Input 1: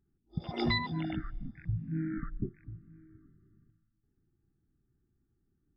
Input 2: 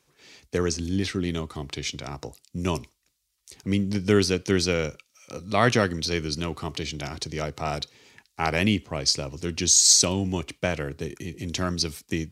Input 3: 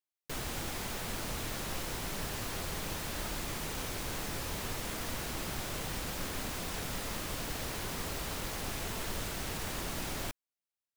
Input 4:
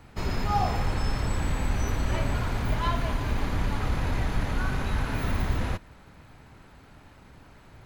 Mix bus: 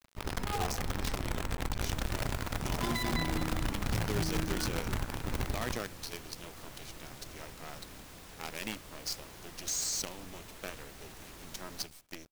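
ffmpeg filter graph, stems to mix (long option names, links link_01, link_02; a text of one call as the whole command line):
ffmpeg -i stem1.wav -i stem2.wav -i stem3.wav -i stem4.wav -filter_complex "[0:a]acompressor=mode=upward:threshold=-37dB:ratio=2.5,adelay=2250,volume=-2dB,asplit=2[link_01][link_02];[link_02]volume=-5dB[link_03];[1:a]bass=frequency=250:gain=-5,treble=frequency=4000:gain=5,volume=-14dB[link_04];[2:a]adelay=1550,volume=-12.5dB,asplit=2[link_05][link_06];[link_06]volume=-22.5dB[link_07];[3:a]lowpass=frequency=2700:poles=1,volume=-8dB[link_08];[link_01][link_04][link_08]amix=inputs=3:normalize=0,acrusher=bits=6:dc=4:mix=0:aa=0.000001,alimiter=level_in=1dB:limit=-24dB:level=0:latency=1:release=36,volume=-1dB,volume=0dB[link_09];[link_03][link_07]amix=inputs=2:normalize=0,aecho=0:1:205|410|615|820:1|0.29|0.0841|0.0244[link_10];[link_05][link_09][link_10]amix=inputs=3:normalize=0" out.wav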